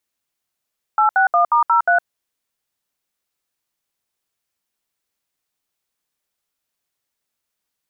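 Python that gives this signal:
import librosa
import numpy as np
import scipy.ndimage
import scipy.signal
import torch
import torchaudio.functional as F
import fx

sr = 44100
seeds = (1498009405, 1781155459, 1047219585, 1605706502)

y = fx.dtmf(sr, digits='861*03', tone_ms=111, gap_ms=68, level_db=-14.0)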